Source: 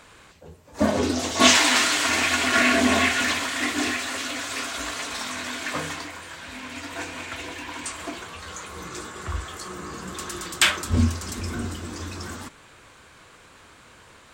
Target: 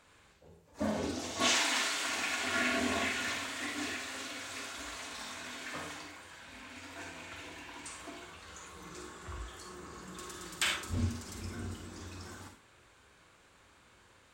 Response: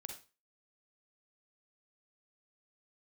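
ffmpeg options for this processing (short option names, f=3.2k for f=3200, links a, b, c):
-filter_complex "[0:a]asettb=1/sr,asplit=3[a][b][c];[a]atrim=end=1.414[d];[b]atrim=start=1.41:end=2.45,asetpts=PTS-STARTPTS,afade=t=in:d=0.004:c=qsin,afade=t=out:st=1.036:d=0.004:c=qsin,lowshelf=f=140:g=-11[e];[c]atrim=start=2.446[f];[d][e]acrossfade=d=0.004:c1=hsin:c2=qsin[g];[g][f]acrossfade=d=0.004:c1=qsin:c2=hsin[h];[1:a]atrim=start_sample=2205[i];[h][i]afir=irnorm=-1:irlink=0,volume=-8dB"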